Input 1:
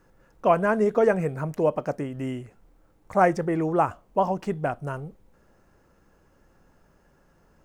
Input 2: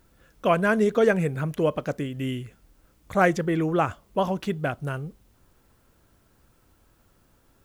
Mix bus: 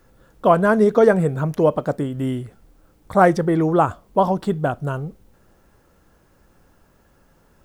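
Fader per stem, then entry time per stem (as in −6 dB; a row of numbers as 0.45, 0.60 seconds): +2.5, −0.5 decibels; 0.00, 0.00 seconds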